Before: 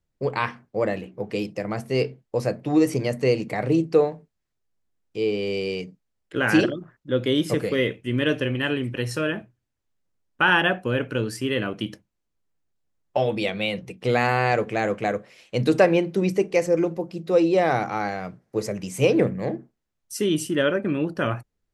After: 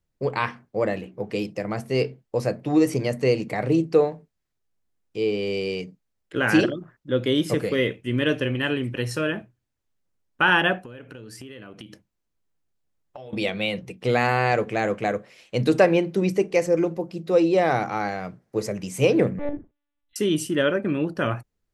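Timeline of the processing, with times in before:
0:10.78–0:13.33: downward compressor 10 to 1, threshold −37 dBFS
0:19.39–0:20.16: one-pitch LPC vocoder at 8 kHz 290 Hz

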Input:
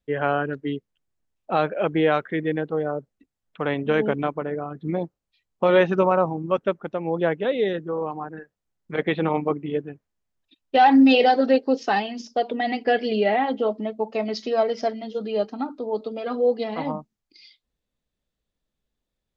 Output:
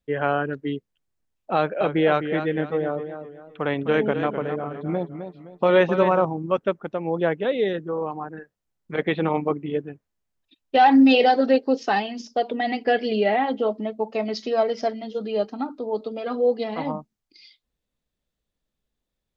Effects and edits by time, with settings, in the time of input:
0:01.55–0:06.25: feedback echo with a swinging delay time 257 ms, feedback 36%, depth 91 cents, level −9 dB

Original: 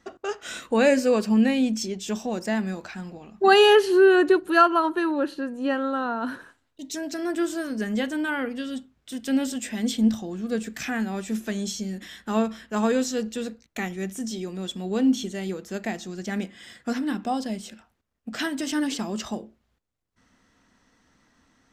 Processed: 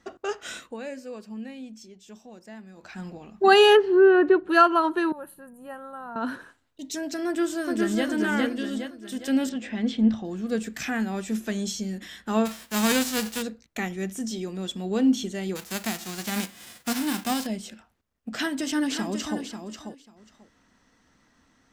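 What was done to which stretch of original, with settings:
0:00.46–0:03.05: duck −17.5 dB, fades 0.31 s
0:03.76–0:04.49: low-pass filter 1,300 Hz → 2,400 Hz
0:05.12–0:06.16: drawn EQ curve 190 Hz 0 dB, 280 Hz −22 dB, 860 Hz −7 dB, 5,400 Hz −25 dB, 11,000 Hz +12 dB
0:07.26–0:08.08: delay throw 410 ms, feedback 45%, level −1.5 dB
0:09.49–0:10.25: low-pass filter 3,100 Hz
0:12.45–0:13.41: spectral envelope flattened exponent 0.3
0:15.55–0:17.45: spectral envelope flattened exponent 0.3
0:18.36–0:19.40: delay throw 540 ms, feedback 15%, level −8 dB

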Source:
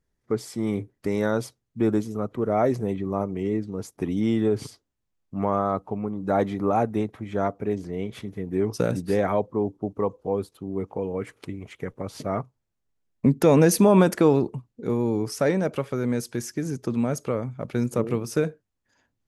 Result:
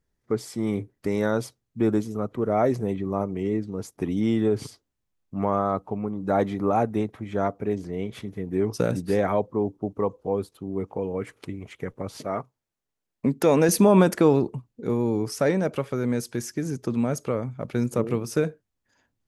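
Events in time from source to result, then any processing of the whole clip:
0:12.17–0:13.69: low-shelf EQ 170 Hz −11.5 dB

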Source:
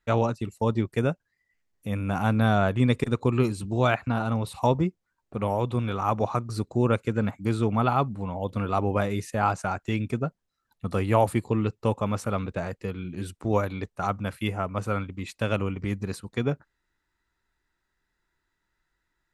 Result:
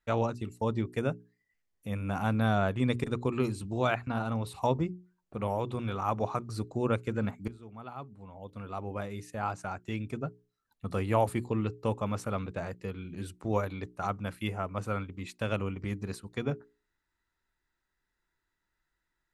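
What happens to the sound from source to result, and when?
0:07.48–0:10.86: fade in, from −23 dB
whole clip: mains-hum notches 60/120/180/240/300/360/420 Hz; level −5 dB

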